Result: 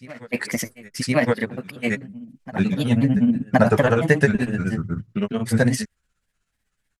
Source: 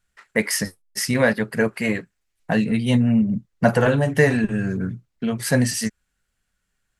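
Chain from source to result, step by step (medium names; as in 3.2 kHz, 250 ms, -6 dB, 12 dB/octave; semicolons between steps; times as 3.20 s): granulator, grains 16 per s, pitch spread up and down by 3 st; reverse echo 1067 ms -20 dB; trim +1.5 dB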